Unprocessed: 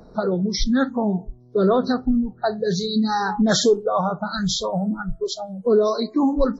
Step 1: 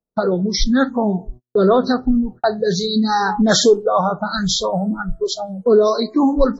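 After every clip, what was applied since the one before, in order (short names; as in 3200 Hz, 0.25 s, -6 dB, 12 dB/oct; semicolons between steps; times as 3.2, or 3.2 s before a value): gate -35 dBFS, range -48 dB; dynamic EQ 110 Hz, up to -5 dB, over -35 dBFS, Q 0.83; gain +5 dB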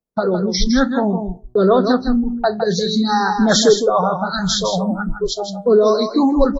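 echo 0.16 s -7.5 dB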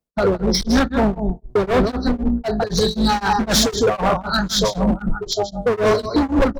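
octaver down 2 oct, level -5 dB; hard clip -15.5 dBFS, distortion -8 dB; beating tremolo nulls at 3.9 Hz; gain +4 dB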